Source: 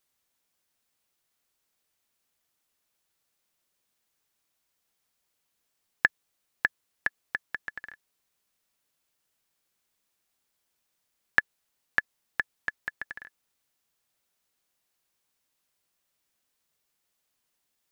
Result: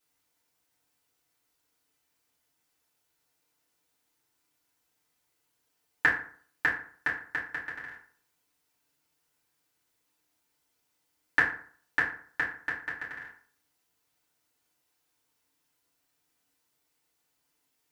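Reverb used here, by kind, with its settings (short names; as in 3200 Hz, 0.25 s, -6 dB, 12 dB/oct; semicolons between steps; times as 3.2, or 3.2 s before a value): FDN reverb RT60 0.51 s, low-frequency decay 1×, high-frequency decay 0.6×, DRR -8.5 dB; gain -6 dB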